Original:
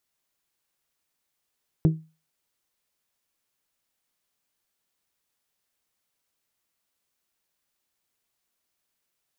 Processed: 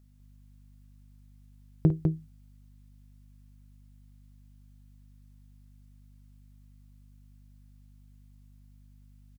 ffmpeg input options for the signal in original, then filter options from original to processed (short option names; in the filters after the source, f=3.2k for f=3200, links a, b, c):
-f lavfi -i "aevalsrc='0.237*pow(10,-3*t/0.31)*sin(2*PI*159*t)+0.106*pow(10,-3*t/0.191)*sin(2*PI*318*t)+0.0473*pow(10,-3*t/0.168)*sin(2*PI*381.6*t)+0.0211*pow(10,-3*t/0.144)*sin(2*PI*477*t)+0.00944*pow(10,-3*t/0.117)*sin(2*PI*636*t)':d=0.89:s=44100"
-af "aeval=exprs='val(0)+0.00141*(sin(2*PI*50*n/s)+sin(2*PI*2*50*n/s)/2+sin(2*PI*3*50*n/s)/3+sin(2*PI*4*50*n/s)/4+sin(2*PI*5*50*n/s)/5)':c=same,aecho=1:1:52.48|201.2:0.282|0.631"